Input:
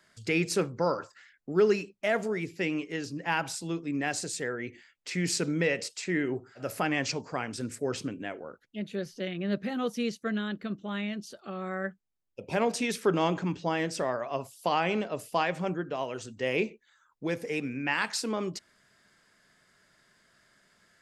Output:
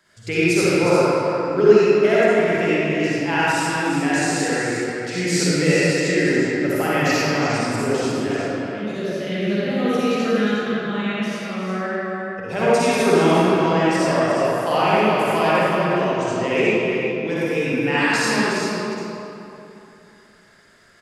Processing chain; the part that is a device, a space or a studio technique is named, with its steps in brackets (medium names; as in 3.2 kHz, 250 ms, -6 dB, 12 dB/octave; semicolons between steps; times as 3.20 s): cave (delay 360 ms -8 dB; reverberation RT60 2.9 s, pre-delay 46 ms, DRR -9.5 dB); trim +1.5 dB